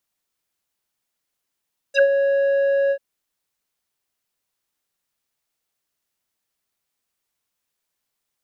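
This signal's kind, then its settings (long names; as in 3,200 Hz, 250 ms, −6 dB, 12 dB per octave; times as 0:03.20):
subtractive voice square C#5 12 dB per octave, low-pass 1,100 Hz, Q 6.4, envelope 3 octaves, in 0.06 s, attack 74 ms, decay 0.06 s, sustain −6 dB, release 0.07 s, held 0.97 s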